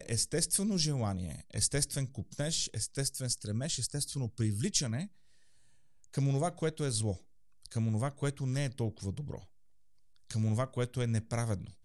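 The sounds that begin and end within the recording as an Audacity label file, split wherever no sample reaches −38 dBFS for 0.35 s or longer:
6.150000	7.160000	sound
7.660000	9.380000	sound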